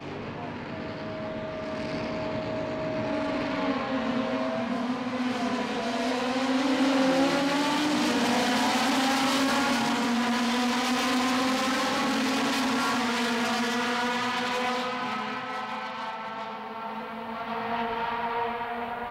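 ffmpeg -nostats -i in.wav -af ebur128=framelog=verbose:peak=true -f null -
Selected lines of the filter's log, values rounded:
Integrated loudness:
  I:         -27.4 LUFS
  Threshold: -37.4 LUFS
Loudness range:
  LRA:         7.7 LU
  Threshold: -47.0 LUFS
  LRA low:   -32.1 LUFS
  LRA high:  -24.4 LUFS
True peak:
  Peak:      -14.1 dBFS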